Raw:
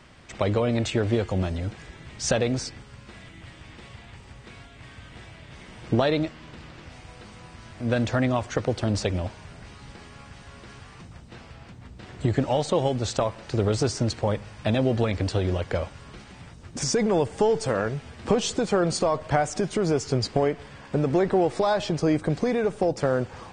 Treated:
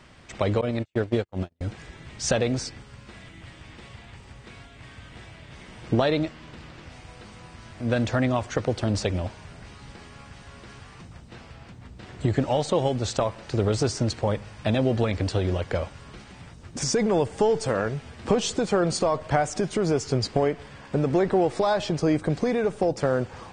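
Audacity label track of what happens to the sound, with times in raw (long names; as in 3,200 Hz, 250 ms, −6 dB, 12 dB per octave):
0.610000	1.610000	noise gate −24 dBFS, range −49 dB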